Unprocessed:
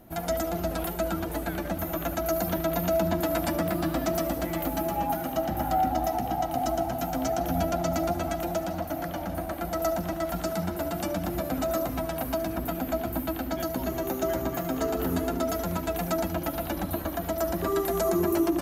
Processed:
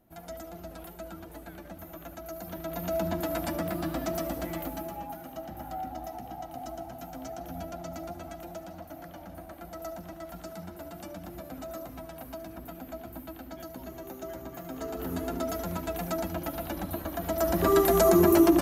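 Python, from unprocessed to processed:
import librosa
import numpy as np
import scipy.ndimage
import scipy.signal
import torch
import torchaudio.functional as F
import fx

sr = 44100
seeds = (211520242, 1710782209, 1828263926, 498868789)

y = fx.gain(x, sr, db=fx.line((2.38, -13.5), (3.0, -4.5), (4.52, -4.5), (5.1, -12.0), (14.48, -12.0), (15.35, -4.0), (17.09, -4.0), (17.71, 5.0)))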